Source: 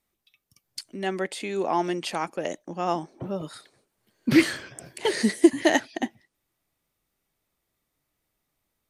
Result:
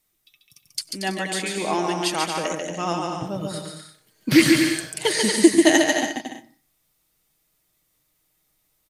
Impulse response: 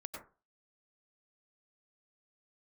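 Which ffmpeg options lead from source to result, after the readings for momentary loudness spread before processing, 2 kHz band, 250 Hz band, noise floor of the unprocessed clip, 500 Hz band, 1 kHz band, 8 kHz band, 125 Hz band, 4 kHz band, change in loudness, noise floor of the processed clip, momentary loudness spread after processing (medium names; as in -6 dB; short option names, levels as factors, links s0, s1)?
16 LU, +6.0 dB, +4.5 dB, -80 dBFS, +3.5 dB, +3.0 dB, +11.5 dB, +5.0 dB, +9.0 dB, +5.0 dB, -70 dBFS, 17 LU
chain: -filter_complex "[0:a]highshelf=f=3000:g=10,aecho=1:1:6.4:0.41,aecho=1:1:140|231|290.2|328.6|353.6:0.631|0.398|0.251|0.158|0.1,asplit=2[s0][s1];[1:a]atrim=start_sample=2205,lowshelf=f=220:g=11.5[s2];[s1][s2]afir=irnorm=-1:irlink=0,volume=0.224[s3];[s0][s3]amix=inputs=2:normalize=0,volume=0.891"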